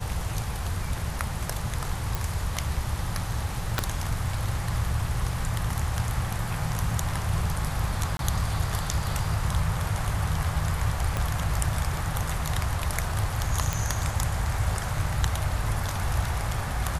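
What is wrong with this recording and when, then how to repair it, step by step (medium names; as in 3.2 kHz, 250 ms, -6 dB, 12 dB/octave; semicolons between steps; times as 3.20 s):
2.15 s: pop
3.79 s: pop -8 dBFS
8.17–8.19 s: dropout 22 ms
11.17 s: pop -13 dBFS
13.73 s: pop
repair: de-click; interpolate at 8.17 s, 22 ms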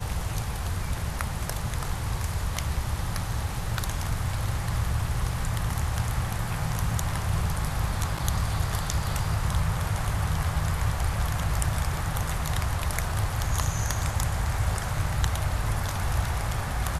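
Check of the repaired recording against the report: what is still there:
3.79 s: pop
11.17 s: pop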